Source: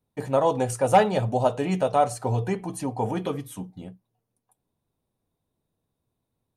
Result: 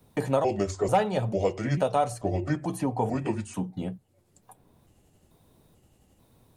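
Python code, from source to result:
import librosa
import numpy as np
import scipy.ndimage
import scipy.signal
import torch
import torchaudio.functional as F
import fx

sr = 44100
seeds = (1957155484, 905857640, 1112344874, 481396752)

y = fx.pitch_trill(x, sr, semitones=-4.5, every_ms=442)
y = fx.band_squash(y, sr, depth_pct=70)
y = y * 10.0 ** (-2.0 / 20.0)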